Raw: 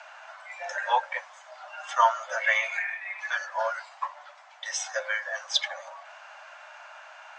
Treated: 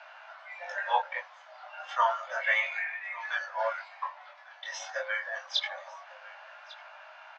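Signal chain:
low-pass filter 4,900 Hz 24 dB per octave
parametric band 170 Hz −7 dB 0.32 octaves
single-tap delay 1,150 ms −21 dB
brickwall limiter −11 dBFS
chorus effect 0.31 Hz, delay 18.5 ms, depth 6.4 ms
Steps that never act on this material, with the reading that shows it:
parametric band 170 Hz: nothing at its input below 480 Hz

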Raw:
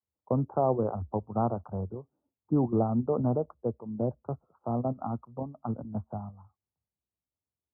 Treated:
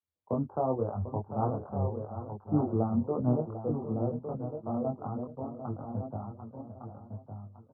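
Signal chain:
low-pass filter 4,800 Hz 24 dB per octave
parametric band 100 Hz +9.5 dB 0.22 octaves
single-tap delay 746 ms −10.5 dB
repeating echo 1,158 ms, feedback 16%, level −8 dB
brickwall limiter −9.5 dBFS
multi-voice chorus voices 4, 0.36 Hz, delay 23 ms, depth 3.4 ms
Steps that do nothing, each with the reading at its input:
low-pass filter 4,800 Hz: nothing at its input above 1,300 Hz
brickwall limiter −9.5 dBFS: peak of its input −13.0 dBFS

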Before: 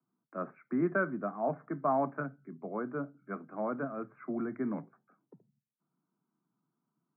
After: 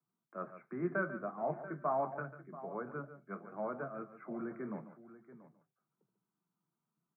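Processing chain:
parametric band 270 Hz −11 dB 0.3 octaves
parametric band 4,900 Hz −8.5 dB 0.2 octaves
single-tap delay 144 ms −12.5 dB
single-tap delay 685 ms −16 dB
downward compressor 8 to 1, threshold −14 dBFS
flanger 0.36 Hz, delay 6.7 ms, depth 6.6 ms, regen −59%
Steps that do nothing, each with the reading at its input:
parametric band 4,900 Hz: nothing at its input above 1,800 Hz
downward compressor, threshold −14 dBFS: peak of its input −18.0 dBFS

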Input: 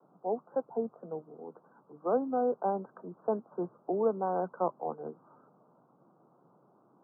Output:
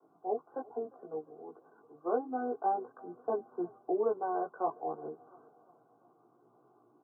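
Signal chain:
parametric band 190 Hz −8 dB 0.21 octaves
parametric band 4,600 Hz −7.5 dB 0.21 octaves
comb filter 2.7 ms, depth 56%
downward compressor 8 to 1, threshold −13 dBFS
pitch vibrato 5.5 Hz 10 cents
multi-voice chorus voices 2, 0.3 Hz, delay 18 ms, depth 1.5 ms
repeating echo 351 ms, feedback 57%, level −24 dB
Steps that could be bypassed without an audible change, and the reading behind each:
parametric band 4,600 Hz: nothing at its input above 1,500 Hz
downward compressor, threshold −13 dBFS: peak of its input −16.5 dBFS

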